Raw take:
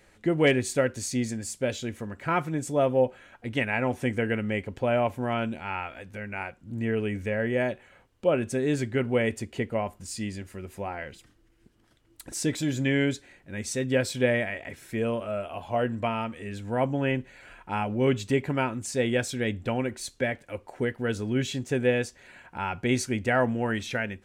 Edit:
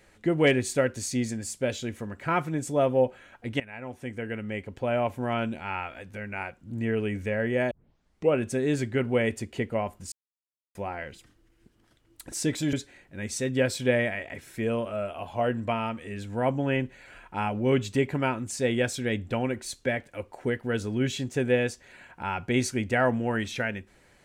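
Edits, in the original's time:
3.60–5.37 s: fade in, from -17.5 dB
7.71 s: tape start 0.63 s
10.12–10.75 s: mute
12.73–13.08 s: delete

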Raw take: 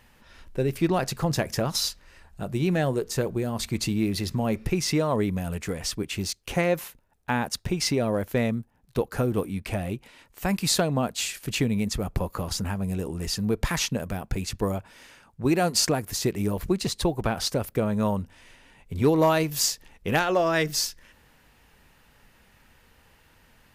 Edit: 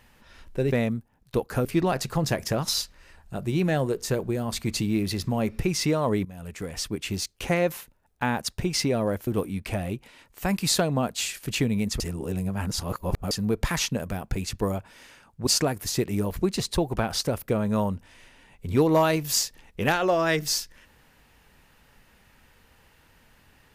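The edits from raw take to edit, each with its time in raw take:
5.32–6.24 s: fade in equal-power, from -18 dB
8.34–9.27 s: move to 0.72 s
12.00–13.31 s: reverse
15.47–15.74 s: delete

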